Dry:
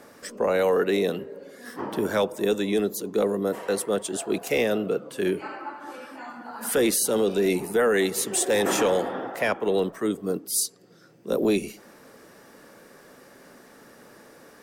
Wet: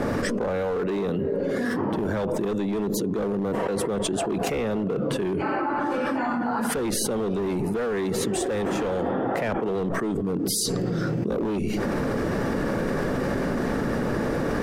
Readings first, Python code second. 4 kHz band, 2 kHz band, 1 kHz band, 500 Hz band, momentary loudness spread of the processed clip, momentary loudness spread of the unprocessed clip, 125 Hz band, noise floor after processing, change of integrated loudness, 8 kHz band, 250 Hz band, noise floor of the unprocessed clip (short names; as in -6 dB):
-1.5 dB, -0.5 dB, +3.5 dB, -1.0 dB, 1 LU, 16 LU, +9.0 dB, -27 dBFS, -1.0 dB, -3.5 dB, +3.5 dB, -52 dBFS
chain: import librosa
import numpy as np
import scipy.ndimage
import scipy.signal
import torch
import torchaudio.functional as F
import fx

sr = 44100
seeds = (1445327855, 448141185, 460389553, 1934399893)

y = fx.riaa(x, sr, side='playback')
y = np.clip(10.0 ** (17.0 / 20.0) * y, -1.0, 1.0) / 10.0 ** (17.0 / 20.0)
y = fx.env_flatten(y, sr, amount_pct=100)
y = y * 10.0 ** (-7.0 / 20.0)